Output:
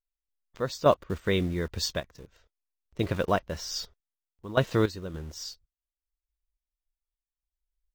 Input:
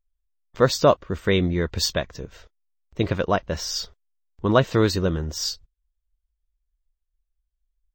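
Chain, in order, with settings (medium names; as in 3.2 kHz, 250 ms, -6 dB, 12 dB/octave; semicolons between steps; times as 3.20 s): in parallel at -5.5 dB: bit crusher 6-bit; on the sum: random-step tremolo, depth 80%; trim -7.5 dB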